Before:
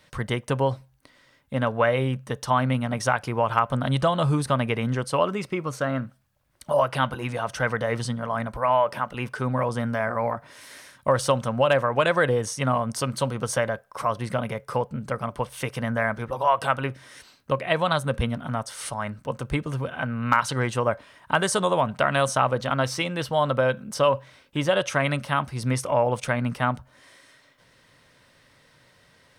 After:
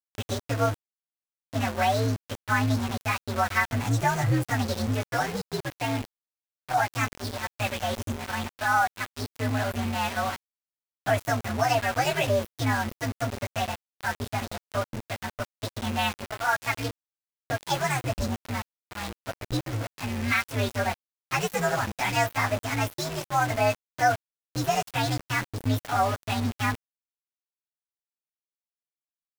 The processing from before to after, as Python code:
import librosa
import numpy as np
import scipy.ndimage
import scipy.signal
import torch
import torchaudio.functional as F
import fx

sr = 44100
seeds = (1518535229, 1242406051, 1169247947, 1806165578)

y = fx.partial_stretch(x, sr, pct=128)
y = fx.env_lowpass(y, sr, base_hz=1900.0, full_db=-25.0)
y = np.where(np.abs(y) >= 10.0 ** (-30.0 / 20.0), y, 0.0)